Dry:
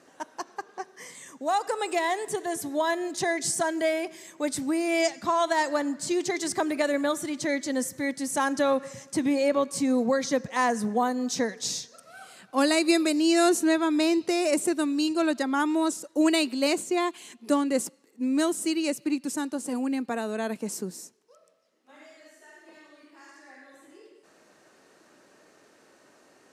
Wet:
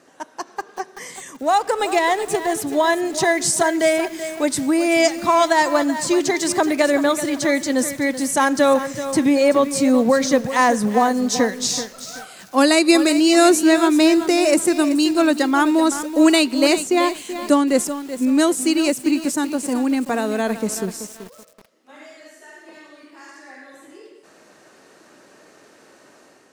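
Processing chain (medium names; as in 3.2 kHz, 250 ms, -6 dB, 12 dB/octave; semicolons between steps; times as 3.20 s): level rider gain up to 5 dB; 1.42–2.68 s: hysteresis with a dead band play -36.5 dBFS; bit-crushed delay 381 ms, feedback 35%, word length 6-bit, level -11 dB; trim +3.5 dB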